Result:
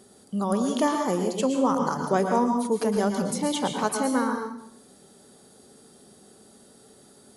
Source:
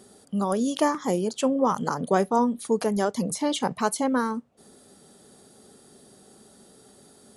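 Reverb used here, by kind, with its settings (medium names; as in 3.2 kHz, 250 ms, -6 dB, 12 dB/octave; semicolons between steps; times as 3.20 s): plate-style reverb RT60 0.67 s, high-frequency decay 1×, pre-delay 100 ms, DRR 3.5 dB; trim -1.5 dB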